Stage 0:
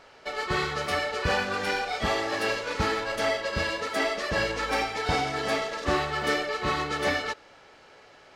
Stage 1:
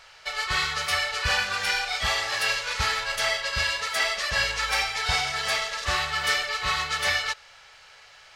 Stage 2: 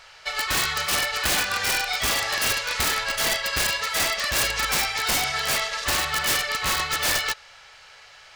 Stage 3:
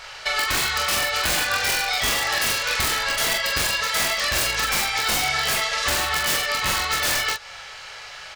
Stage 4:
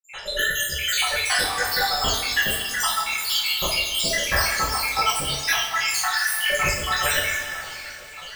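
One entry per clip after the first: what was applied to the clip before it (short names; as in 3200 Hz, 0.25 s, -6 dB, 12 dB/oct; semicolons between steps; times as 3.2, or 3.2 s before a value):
passive tone stack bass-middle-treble 10-0-10; gain +9 dB
wrapped overs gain 18.5 dB; gain +2.5 dB
compressor 6:1, threshold -30 dBFS, peak gain reduction 10 dB; on a send: early reflections 24 ms -6 dB, 43 ms -5 dB; on the sum: gain +8 dB
random spectral dropouts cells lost 85%; two-slope reverb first 0.48 s, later 3.7 s, from -15 dB, DRR -5 dB; gain +1.5 dB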